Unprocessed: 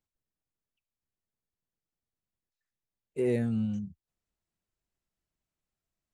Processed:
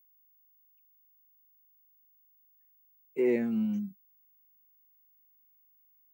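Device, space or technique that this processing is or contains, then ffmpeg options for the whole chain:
old television with a line whistle: -af "highpass=frequency=190:width=0.5412,highpass=frequency=190:width=1.3066,equalizer=frequency=200:width_type=q:width=4:gain=6,equalizer=frequency=340:width_type=q:width=4:gain=7,equalizer=frequency=950:width_type=q:width=4:gain=8,equalizer=frequency=2200:width_type=q:width=4:gain=10,equalizer=frequency=3800:width_type=q:width=4:gain=-8,lowpass=frequency=7000:width=0.5412,lowpass=frequency=7000:width=1.3066,aeval=exprs='val(0)+0.000891*sin(2*PI*15625*n/s)':channel_layout=same,volume=-2dB"

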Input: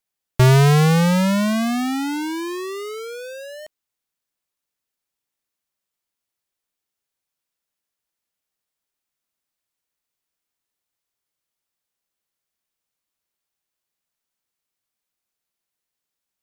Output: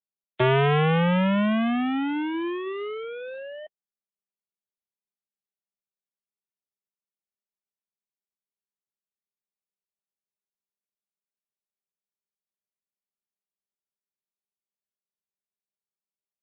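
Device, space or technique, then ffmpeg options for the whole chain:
mobile call with aggressive noise cancelling: -af "highpass=frequency=180:width=0.5412,highpass=frequency=180:width=1.3066,afftdn=noise_reduction=22:noise_floor=-39,volume=-1.5dB" -ar 8000 -c:a libopencore_amrnb -b:a 12200

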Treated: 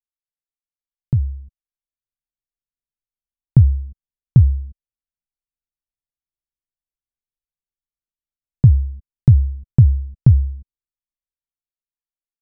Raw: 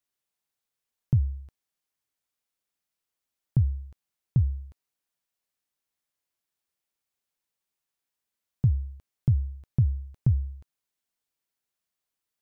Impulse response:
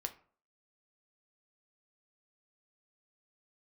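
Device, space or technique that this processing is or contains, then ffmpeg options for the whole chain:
voice memo with heavy noise removal: -af "anlmdn=0.158,dynaudnorm=framelen=310:gausssize=11:maxgain=11.5dB,volume=2dB"

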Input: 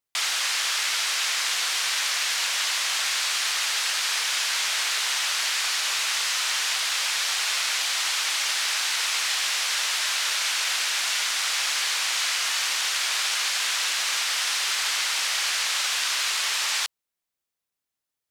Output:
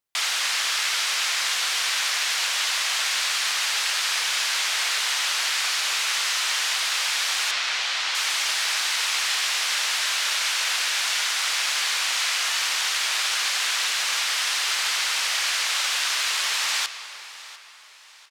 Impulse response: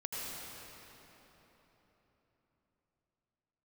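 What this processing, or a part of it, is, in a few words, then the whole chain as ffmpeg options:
filtered reverb send: -filter_complex "[0:a]asettb=1/sr,asplit=3[link_01][link_02][link_03];[link_01]atrim=end=7.514[link_04];[link_02]atrim=start=7.51:end=8.15,asetpts=PTS-STARTPTS,afade=type=in:duration=0.004:curve=qsin,afade=type=out:start_time=0.636:duration=0.004:curve=qsin,lowpass=5200[link_05];[link_03]atrim=start=8.146[link_06];[link_04][link_05]acrossfade=duration=0.004:curve1=hsin:curve2=qsin[link_07];[link_07][link_06]acrossfade=duration=0.004:curve1=qsin:curve2=hsin,asplit=2[link_08][link_09];[link_09]highpass=320,lowpass=6000[link_10];[1:a]atrim=start_sample=2205[link_11];[link_10][link_11]afir=irnorm=-1:irlink=0,volume=-11.5dB[link_12];[link_08][link_12]amix=inputs=2:normalize=0,aecho=1:1:698|1396|2094:0.119|0.0487|0.02"

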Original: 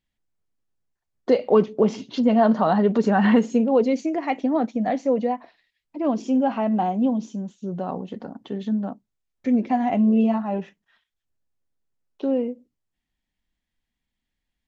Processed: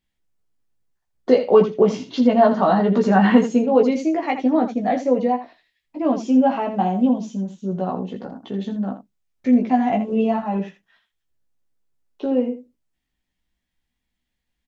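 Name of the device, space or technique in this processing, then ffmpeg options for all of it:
slapback doubling: -filter_complex "[0:a]asplit=3[link_01][link_02][link_03];[link_02]adelay=16,volume=-3dB[link_04];[link_03]adelay=81,volume=-9.5dB[link_05];[link_01][link_04][link_05]amix=inputs=3:normalize=0,volume=1dB"

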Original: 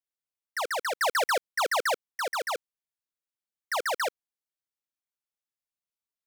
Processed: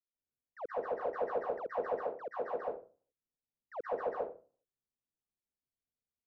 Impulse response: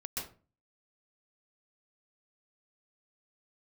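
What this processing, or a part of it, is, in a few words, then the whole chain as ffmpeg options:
television next door: -filter_complex "[0:a]asettb=1/sr,asplit=3[link_01][link_02][link_03];[link_01]atrim=end=1.824[link_04];[link_02]atrim=start=1.82:end=2.43,asetpts=PTS-STARTPTS,afade=type=in:duration=0.004:curve=qsin,afade=type=out:start_time=0.606:duration=0.004:curve=qsin,highpass=95[link_05];[link_03]atrim=start=2.426[link_06];[link_04][link_05]acrossfade=duration=0.004:curve1=hsin:curve2=qsin[link_07];[link_07][link_06]acrossfade=duration=0.004:curve1=qsin:curve2=hsin,acompressor=threshold=-29dB:ratio=6,lowpass=490[link_08];[1:a]atrim=start_sample=2205[link_09];[link_08][link_09]afir=irnorm=-1:irlink=0,volume=3dB"

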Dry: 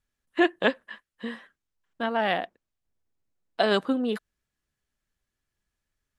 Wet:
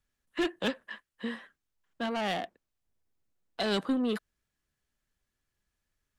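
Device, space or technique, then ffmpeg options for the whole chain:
one-band saturation: -filter_complex "[0:a]acrossover=split=250|3000[link_01][link_02][link_03];[link_02]asoftclip=type=tanh:threshold=-30.5dB[link_04];[link_01][link_04][link_03]amix=inputs=3:normalize=0"

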